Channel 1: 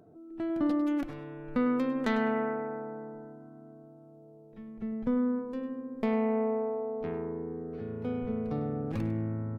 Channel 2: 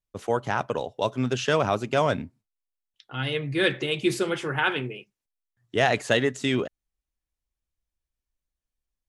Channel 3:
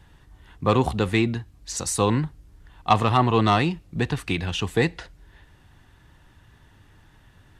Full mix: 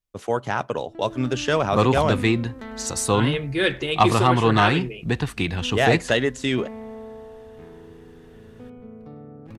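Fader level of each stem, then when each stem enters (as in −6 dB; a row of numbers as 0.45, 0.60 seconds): −8.5, +1.5, +1.0 decibels; 0.55, 0.00, 1.10 seconds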